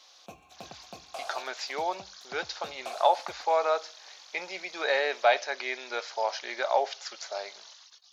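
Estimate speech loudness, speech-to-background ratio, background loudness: -30.0 LUFS, 16.5 dB, -46.5 LUFS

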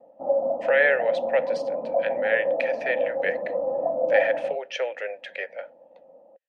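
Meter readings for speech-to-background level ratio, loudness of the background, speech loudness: 0.5 dB, -27.0 LUFS, -26.5 LUFS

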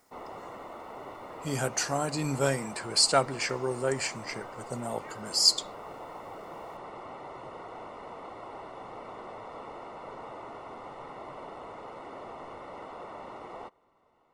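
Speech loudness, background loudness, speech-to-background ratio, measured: -28.0 LUFS, -43.5 LUFS, 15.5 dB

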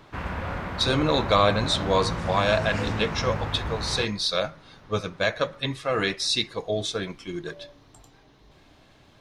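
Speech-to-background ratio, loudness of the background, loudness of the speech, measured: 6.0 dB, -31.5 LUFS, -25.5 LUFS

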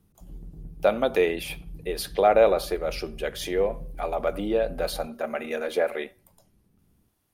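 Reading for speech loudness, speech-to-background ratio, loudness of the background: -26.0 LUFS, 18.5 dB, -44.5 LUFS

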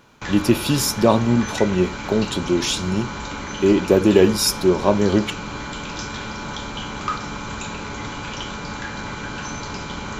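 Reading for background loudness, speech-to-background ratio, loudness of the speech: -30.0 LUFS, 11.0 dB, -19.0 LUFS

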